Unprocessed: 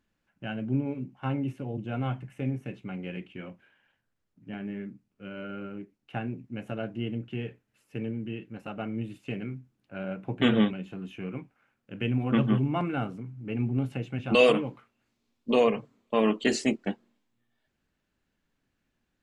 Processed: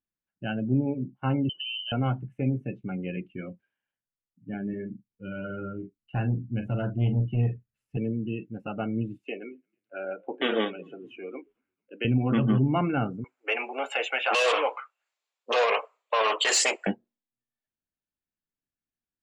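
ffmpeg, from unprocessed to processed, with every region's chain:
ffmpeg -i in.wav -filter_complex "[0:a]asettb=1/sr,asplit=3[link_01][link_02][link_03];[link_01]atrim=end=1.494[link_04];[link_02]atrim=start=1.49:end=1.92,asetpts=PTS-STARTPTS,afade=type=in:duration=0.004:curve=qsin,afade=type=out:start_time=0.426:duration=0.004:curve=qsin,aecho=1:1:6.6:0.33,atrim=end_sample=18963,lowpass=frequency=2700:width_type=q:width=0.5098,lowpass=frequency=2700:width_type=q:width=0.6013,lowpass=frequency=2700:width_type=q:width=0.9,lowpass=frequency=2700:width_type=q:width=2.563,afreqshift=-3200,acompressor=threshold=-37dB:ratio=2:attack=3.2:release=140:knee=1:detection=peak[link_05];[link_03]atrim=start=1.916[link_06];[link_04][link_05]acrossfade=duration=0.004:curve1=hsin:curve2=qsin[link_07];[link_07][link_06]acrossfade=duration=0.004:curve1=qsin:curve2=hsin,asettb=1/sr,asplit=3[link_08][link_09][link_10];[link_08]atrim=end=4.694[link_11];[link_09]atrim=start=4.69:end=7.97,asetpts=PTS-STARTPTS,afade=type=in:duration=0.004:curve=qsin,afade=type=out:start_time=3.276:duration=0.004:curve=qsin,asubboost=boost=6:cutoff=140,asoftclip=type=hard:threshold=-26.5dB,asplit=2[link_12][link_13];[link_13]adelay=42,volume=-6dB[link_14];[link_12][link_14]amix=inputs=2:normalize=0,atrim=end_sample=144648[link_15];[link_10]atrim=start=7.966[link_16];[link_11][link_15]acrossfade=duration=0.004:curve1=hsin:curve2=qsin[link_17];[link_17][link_16]acrossfade=duration=0.004:curve1=qsin:curve2=hsin,asettb=1/sr,asplit=3[link_18][link_19][link_20];[link_18]atrim=end=9.244[link_21];[link_19]atrim=start=9.24:end=12.05,asetpts=PTS-STARTPTS,afade=type=in:duration=0.004:curve=qsin,afade=type=out:start_time=2.806:duration=0.004:curve=qsin,highpass=frequency=330:width=0.5412,highpass=frequency=330:width=1.3066,asplit=5[link_22][link_23][link_24][link_25][link_26];[link_23]adelay=223,afreqshift=-44,volume=-21dB[link_27];[link_24]adelay=446,afreqshift=-88,volume=-26.8dB[link_28];[link_25]adelay=669,afreqshift=-132,volume=-32.7dB[link_29];[link_26]adelay=892,afreqshift=-176,volume=-38.5dB[link_30];[link_22][link_27][link_28][link_29][link_30]amix=inputs=5:normalize=0,atrim=end_sample=123921[link_31];[link_20]atrim=start=12.046[link_32];[link_21][link_31]acrossfade=duration=0.004:curve1=hsin:curve2=qsin[link_33];[link_33][link_32]acrossfade=duration=0.004:curve1=qsin:curve2=hsin,asettb=1/sr,asplit=3[link_34][link_35][link_36];[link_34]atrim=end=13.244[link_37];[link_35]atrim=start=13.24:end=16.87,asetpts=PTS-STARTPTS,afade=type=in:duration=0.004:curve=qsin,afade=type=out:start_time=3.626:duration=0.004:curve=qsin,equalizer=frequency=7300:width=6.1:gain=9.5,asplit=2[link_38][link_39];[link_39]highpass=frequency=720:poles=1,volume=23dB,asoftclip=type=tanh:threshold=-8.5dB[link_40];[link_38][link_40]amix=inputs=2:normalize=0,lowpass=frequency=4200:poles=1,volume=-6dB,highpass=frequency=550:width=0.5412,highpass=frequency=550:width=1.3066[link_41];[link_36]atrim=start=16.866[link_42];[link_37][link_41]acrossfade=duration=0.004:curve1=hsin:curve2=qsin[link_43];[link_43][link_42]acrossfade=duration=0.004:curve1=qsin:curve2=hsin,afftdn=noise_reduction=24:noise_floor=-42,alimiter=limit=-19dB:level=0:latency=1:release=38,volume=4dB" out.wav

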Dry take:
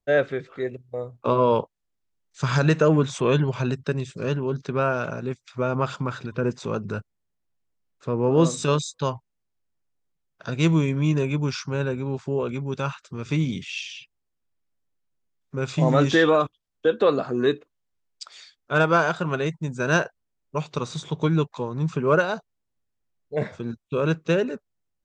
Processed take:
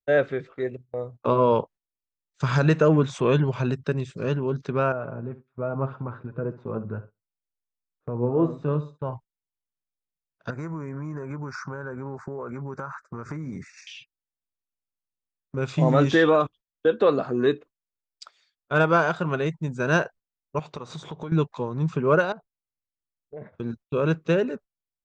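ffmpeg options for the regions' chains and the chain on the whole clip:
ffmpeg -i in.wav -filter_complex "[0:a]asettb=1/sr,asplit=3[link_01][link_02][link_03];[link_01]atrim=end=4.924[link_04];[link_02]atrim=start=4.92:end=9.13,asetpts=PTS-STARTPTS,afade=type=in:duration=0.004:curve=qsin,afade=type=out:start_time=4.206:duration=0.004:curve=qsin,lowpass=1200,aecho=1:1:67|134|201:0.188|0.0509|0.0137,atrim=end_sample=185661,flanger=delay=6.3:depth=2.8:regen=40:speed=1.3:shape=sinusoidal[link_05];[link_03]atrim=start=9.126[link_06];[link_04][link_05]acrossfade=duration=0.004:curve1=hsin:curve2=qsin[link_07];[link_07][link_06]acrossfade=duration=0.004:curve1=qsin:curve2=hsin,asettb=1/sr,asplit=3[link_08][link_09][link_10];[link_08]atrim=end=10.504[link_11];[link_09]atrim=start=10.5:end=13.87,asetpts=PTS-STARTPTS,afade=type=in:duration=0.004:curve=qsin,afade=type=out:start_time=3.366:duration=0.004:curve=qsin,asuperstop=centerf=3100:order=4:qfactor=0.69,equalizer=frequency=1600:width=0.57:gain=13.5,acompressor=threshold=-29dB:ratio=12:attack=3.2:release=140:knee=1:detection=peak[link_12];[link_10]atrim=start=13.866[link_13];[link_11][link_12]acrossfade=duration=0.004:curve1=hsin:curve2=qsin[link_14];[link_14][link_13]acrossfade=duration=0.004:curve1=qsin:curve2=hsin,asettb=1/sr,asplit=3[link_15][link_16][link_17];[link_15]atrim=end=20.594[link_18];[link_16]atrim=start=20.59:end=21.32,asetpts=PTS-STARTPTS,afade=type=in:duration=0.004:curve=qsin,afade=type=out:start_time=0.726:duration=0.004:curve=qsin,agate=range=-33dB:threshold=-47dB:ratio=3:release=100:detection=peak,equalizer=frequency=790:width_type=o:width=1.9:gain=6,acompressor=threshold=-32dB:ratio=5:attack=3.2:release=140:knee=1:detection=peak[link_19];[link_17]atrim=start=21.316[link_20];[link_18][link_19]acrossfade=duration=0.004:curve1=hsin:curve2=qsin[link_21];[link_21][link_20]acrossfade=duration=0.004:curve1=qsin:curve2=hsin,asettb=1/sr,asplit=3[link_22][link_23][link_24];[link_22]atrim=end=22.324[link_25];[link_23]atrim=start=22.32:end=23.59,asetpts=PTS-STARTPTS,afade=type=in:duration=0.004:curve=qsin,afade=type=out:start_time=1.266:duration=0.004:curve=qsin,lowpass=1600,acompressor=threshold=-37dB:ratio=4:attack=3.2:release=140:knee=1:detection=peak[link_26];[link_24]atrim=start=23.586[link_27];[link_25][link_26]acrossfade=duration=0.004:curve1=hsin:curve2=qsin[link_28];[link_28][link_27]acrossfade=duration=0.004:curve1=qsin:curve2=hsin,agate=range=-16dB:threshold=-42dB:ratio=16:detection=peak,highshelf=frequency=3900:gain=-8" out.wav

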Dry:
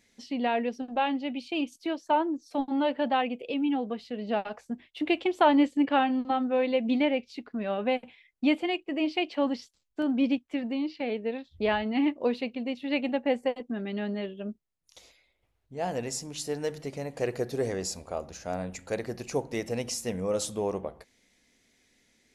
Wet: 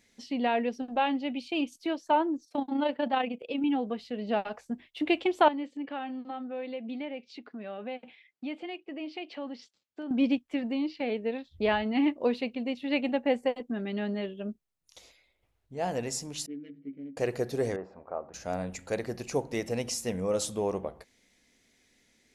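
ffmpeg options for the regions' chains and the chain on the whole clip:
ffmpeg -i in.wav -filter_complex "[0:a]asettb=1/sr,asplit=3[link_01][link_02][link_03];[link_01]atrim=end=2.454[link_04];[link_02]atrim=start=2.45:end=3.64,asetpts=PTS-STARTPTS,afade=type=in:duration=0.004:curve=qsin,afade=type=out:start_time=1.186:duration=0.004:curve=qsin,highpass=48,agate=range=-8dB:threshold=-42dB:ratio=16:release=100:detection=peak,tremolo=f=29:d=0.462[link_05];[link_03]atrim=start=3.636[link_06];[link_04][link_05]acrossfade=duration=0.004:curve1=hsin:curve2=qsin[link_07];[link_07][link_06]acrossfade=duration=0.004:curve1=qsin:curve2=hsin,asettb=1/sr,asplit=3[link_08][link_09][link_10];[link_08]atrim=end=5.484[link_11];[link_09]atrim=start=5.48:end=10.11,asetpts=PTS-STARTPTS,afade=type=in:duration=0.004:curve=qsin,afade=type=out:start_time=4.626:duration=0.004:curve=qsin,acompressor=threshold=-42dB:ratio=2:attack=3.2:release=140:knee=1:detection=peak,highpass=170,lowpass=5200,bandreject=frequency=1000:width=16[link_12];[link_10]atrim=start=10.106[link_13];[link_11][link_12]acrossfade=duration=0.004:curve1=hsin:curve2=qsin[link_14];[link_14][link_13]acrossfade=duration=0.004:curve1=qsin:curve2=hsin,asettb=1/sr,asplit=3[link_15][link_16][link_17];[link_15]atrim=end=16.464[link_18];[link_16]atrim=start=16.46:end=17.17,asetpts=PTS-STARTPTS,afade=type=in:duration=0.004:curve=qsin,afade=type=out:start_time=0.706:duration=0.004:curve=qsin,adynamicsmooth=sensitivity=1.5:basefreq=820,asplit=3[link_19][link_20][link_21];[link_19]bandpass=frequency=270:width_type=q:width=8,volume=0dB[link_22];[link_20]bandpass=frequency=2290:width_type=q:width=8,volume=-6dB[link_23];[link_21]bandpass=frequency=3010:width_type=q:width=8,volume=-9dB[link_24];[link_22][link_23][link_24]amix=inputs=3:normalize=0,asplit=2[link_25][link_26];[link_26]adelay=14,volume=-3.5dB[link_27];[link_25][link_27]amix=inputs=2:normalize=0,atrim=end_sample=31311[link_28];[link_17]atrim=start=17.166[link_29];[link_18][link_28]acrossfade=duration=0.004:curve1=hsin:curve2=qsin[link_30];[link_30][link_29]acrossfade=duration=0.004:curve1=qsin:curve2=hsin,asettb=1/sr,asplit=3[link_31][link_32][link_33];[link_31]atrim=end=17.764[link_34];[link_32]atrim=start=17.76:end=18.34,asetpts=PTS-STARTPTS,afade=type=in:duration=0.004:curve=qsin,afade=type=out:start_time=0.576:duration=0.004:curve=qsin,lowpass=frequency=1400:width=0.5412,lowpass=frequency=1400:width=1.3066,aemphasis=mode=production:type=riaa[link_35];[link_33]atrim=start=18.336[link_36];[link_34][link_35]acrossfade=duration=0.004:curve1=hsin:curve2=qsin[link_37];[link_37][link_36]acrossfade=duration=0.004:curve1=qsin:curve2=hsin" out.wav

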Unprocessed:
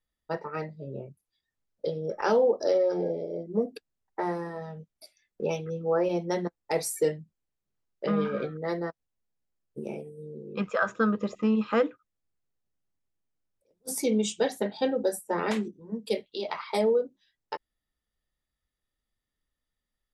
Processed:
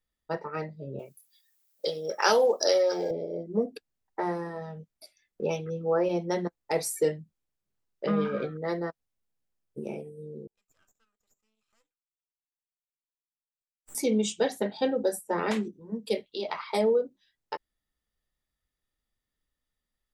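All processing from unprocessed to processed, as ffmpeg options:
ffmpeg -i in.wav -filter_complex "[0:a]asettb=1/sr,asplit=3[link_01][link_02][link_03];[link_01]atrim=end=0.994[link_04];[link_02]atrim=start=0.99:end=3.11,asetpts=PTS-STARTPTS,afade=type=in:duration=0.004:curve=qsin,afade=type=out:start_time=2.116:duration=0.004:curve=qsin,highpass=frequency=930:poles=1,aemphasis=mode=production:type=75fm,acontrast=82[link_05];[link_03]atrim=start=3.106[link_06];[link_04][link_05]acrossfade=duration=0.004:curve1=hsin:curve2=qsin[link_07];[link_07][link_06]acrossfade=duration=0.004:curve1=qsin:curve2=hsin,asettb=1/sr,asplit=3[link_08][link_09][link_10];[link_08]atrim=end=10.474[link_11];[link_09]atrim=start=10.47:end=13.95,asetpts=PTS-STARTPTS,afade=type=in:duration=0.004:curve=qsin,afade=type=out:start_time=3.476:duration=0.004:curve=qsin,bandpass=frequency=7600:width_type=q:width=17,aeval=exprs='max(val(0),0)':channel_layout=same[link_12];[link_10]atrim=start=13.946[link_13];[link_11][link_12]acrossfade=duration=0.004:curve1=hsin:curve2=qsin[link_14];[link_14][link_13]acrossfade=duration=0.004:curve1=qsin:curve2=hsin" out.wav

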